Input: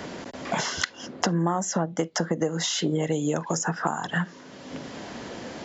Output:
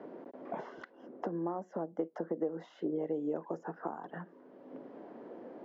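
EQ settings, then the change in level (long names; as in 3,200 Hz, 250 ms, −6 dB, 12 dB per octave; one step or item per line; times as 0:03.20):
four-pole ladder band-pass 450 Hz, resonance 25%
+2.5 dB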